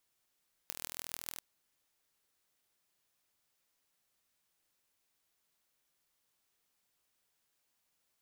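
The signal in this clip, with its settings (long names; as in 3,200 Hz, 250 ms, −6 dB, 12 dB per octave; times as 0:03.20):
impulse train 40.8 per second, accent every 6, −10 dBFS 0.69 s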